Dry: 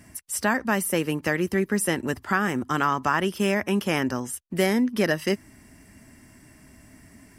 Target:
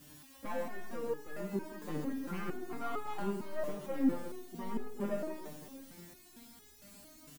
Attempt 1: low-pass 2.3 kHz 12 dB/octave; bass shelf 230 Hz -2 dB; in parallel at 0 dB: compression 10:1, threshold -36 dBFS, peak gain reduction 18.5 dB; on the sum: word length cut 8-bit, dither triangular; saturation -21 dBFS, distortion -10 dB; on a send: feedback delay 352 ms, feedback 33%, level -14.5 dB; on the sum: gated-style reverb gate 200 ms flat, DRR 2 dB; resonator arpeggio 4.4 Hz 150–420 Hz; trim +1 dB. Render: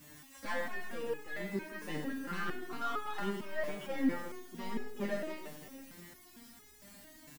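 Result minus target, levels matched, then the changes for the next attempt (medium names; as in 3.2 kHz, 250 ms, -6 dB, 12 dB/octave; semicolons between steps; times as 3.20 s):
compression: peak gain reduction +9 dB; 2 kHz band +8.0 dB
change: low-pass 810 Hz 12 dB/octave; change: compression 10:1, threshold -27 dBFS, peak gain reduction 9.5 dB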